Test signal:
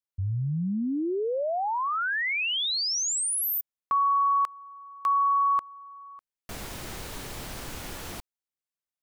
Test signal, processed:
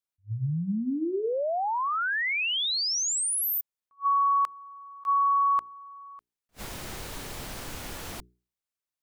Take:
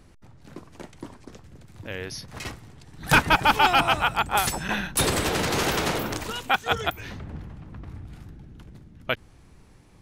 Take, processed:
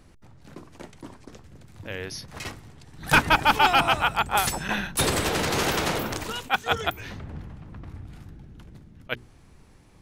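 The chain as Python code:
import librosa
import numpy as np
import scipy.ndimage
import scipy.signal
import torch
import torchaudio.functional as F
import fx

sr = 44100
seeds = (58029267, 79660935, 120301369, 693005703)

y = fx.hum_notches(x, sr, base_hz=60, count=7)
y = fx.attack_slew(y, sr, db_per_s=430.0)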